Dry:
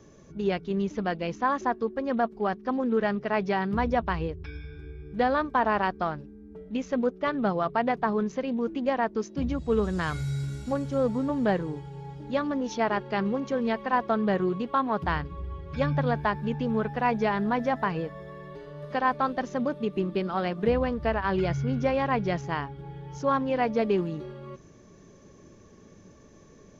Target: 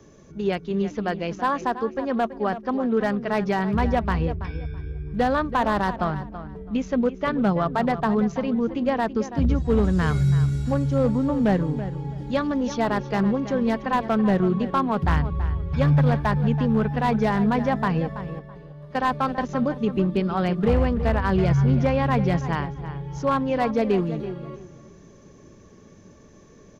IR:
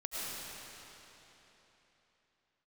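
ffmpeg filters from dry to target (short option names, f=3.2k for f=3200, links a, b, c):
-filter_complex "[0:a]asettb=1/sr,asplit=3[a][b][c];[a]atrim=end=12.184[d];[b]atrim=start=12.18:end=12.69,asetpts=PTS-STARTPTS,afade=t=in:d=0.004:c=qsin,afade=t=out:st=0.506:d=0.004:c=qsin,highshelf=f=3.8k:g=6[e];[c]atrim=start=12.686[f];[d][e]acrossfade=d=0.004:c1=hsin:c2=qsin[g];[g][f]acrossfade=d=0.004:c1=qsin:c2=hsin,asettb=1/sr,asplit=3[h][i][j];[h]atrim=end=18.394[k];[i]atrim=start=18.39:end=19.49,asetpts=PTS-STARTPTS,afade=t=in:d=0.004:c=qsin,afade=t=out:st=1.096:d=0.004:c=qsin,agate=range=-10dB:threshold=-31dB:ratio=16:detection=peak[l];[j]atrim=start=19.486[m];[k][l]acrossfade=d=0.004:c1=hsin:c2=qsin[n];[n][m]acrossfade=d=0.004:c1=qsin:c2=hsin,acrossover=split=170[o][p];[o]dynaudnorm=f=600:g=13:m=10.5dB[q];[q][p]amix=inputs=2:normalize=0,volume=15.5dB,asoftclip=hard,volume=-15.5dB,asplit=2[r][s];[s]adelay=330,lowpass=f=3.6k:p=1,volume=-12dB,asplit=2[t][u];[u]adelay=330,lowpass=f=3.6k:p=1,volume=0.22,asplit=2[v][w];[w]adelay=330,lowpass=f=3.6k:p=1,volume=0.22[x];[r][t][v][x]amix=inputs=4:normalize=0,volume=2.5dB"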